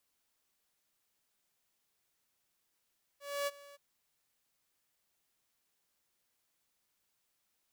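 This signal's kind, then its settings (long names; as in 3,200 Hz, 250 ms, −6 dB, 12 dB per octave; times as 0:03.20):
note with an ADSR envelope saw 569 Hz, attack 271 ms, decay 32 ms, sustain −21 dB, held 0.55 s, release 23 ms −29 dBFS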